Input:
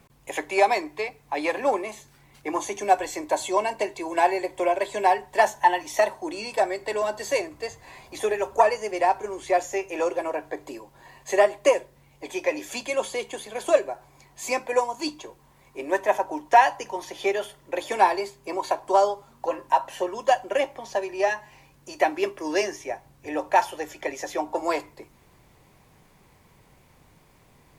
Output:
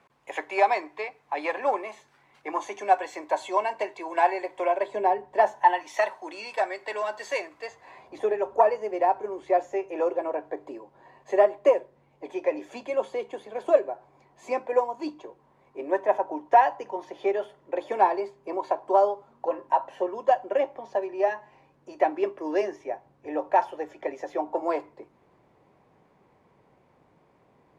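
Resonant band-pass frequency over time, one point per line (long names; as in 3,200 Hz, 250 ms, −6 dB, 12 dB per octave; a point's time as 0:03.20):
resonant band-pass, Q 0.65
0:04.66 1,100 Hz
0:05.15 320 Hz
0:05.95 1,500 Hz
0:07.59 1,500 Hz
0:08.16 500 Hz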